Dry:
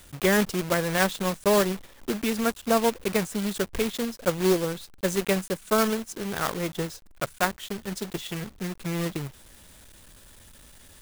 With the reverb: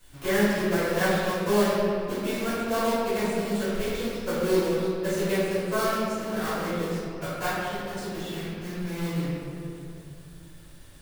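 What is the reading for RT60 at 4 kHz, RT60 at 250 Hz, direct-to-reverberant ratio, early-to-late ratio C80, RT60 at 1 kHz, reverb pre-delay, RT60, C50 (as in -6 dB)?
1.4 s, 3.0 s, -14.5 dB, -1.5 dB, 2.2 s, 3 ms, 2.5 s, -4.0 dB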